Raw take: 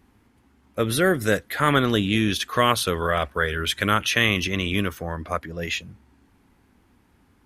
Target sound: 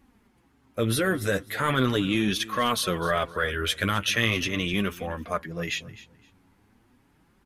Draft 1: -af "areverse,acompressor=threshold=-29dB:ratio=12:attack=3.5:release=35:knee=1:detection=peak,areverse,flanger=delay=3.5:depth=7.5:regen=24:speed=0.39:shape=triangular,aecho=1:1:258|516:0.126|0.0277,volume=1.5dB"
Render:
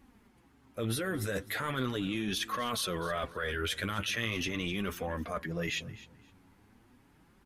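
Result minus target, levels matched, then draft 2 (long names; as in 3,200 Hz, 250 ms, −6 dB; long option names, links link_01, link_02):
downward compressor: peak gain reduction +10 dB
-af "areverse,acompressor=threshold=-18dB:ratio=12:attack=3.5:release=35:knee=1:detection=peak,areverse,flanger=delay=3.5:depth=7.5:regen=24:speed=0.39:shape=triangular,aecho=1:1:258|516:0.126|0.0277,volume=1.5dB"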